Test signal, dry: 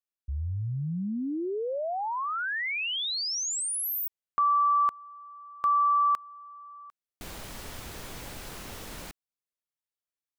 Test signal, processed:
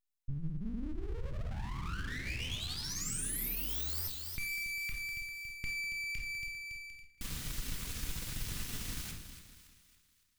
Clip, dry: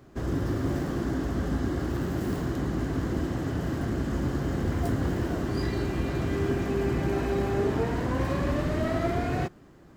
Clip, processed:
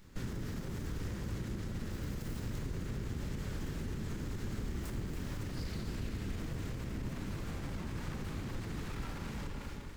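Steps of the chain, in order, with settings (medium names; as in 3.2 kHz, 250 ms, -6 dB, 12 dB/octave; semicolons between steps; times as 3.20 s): hum notches 50/100 Hz; dynamic bell 2.4 kHz, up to -7 dB, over -43 dBFS, Q 0.89; two-band feedback delay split 960 Hz, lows 199 ms, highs 280 ms, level -10.5 dB; simulated room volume 800 m³, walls furnished, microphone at 1.9 m; compression 5:1, threshold -28 dBFS; full-wave rectifier; peak limiter -24.5 dBFS; amplifier tone stack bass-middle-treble 6-0-2; trim +16 dB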